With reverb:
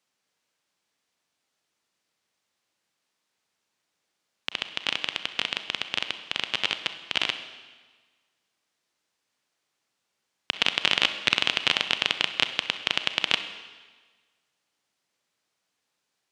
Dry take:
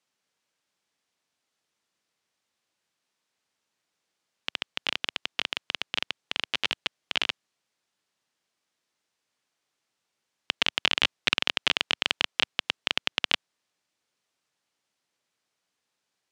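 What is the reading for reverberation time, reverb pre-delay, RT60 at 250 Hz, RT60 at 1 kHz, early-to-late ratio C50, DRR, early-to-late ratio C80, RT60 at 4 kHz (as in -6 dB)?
1.4 s, 32 ms, 1.4 s, 1.4 s, 10.0 dB, 9.0 dB, 12.0 dB, 1.3 s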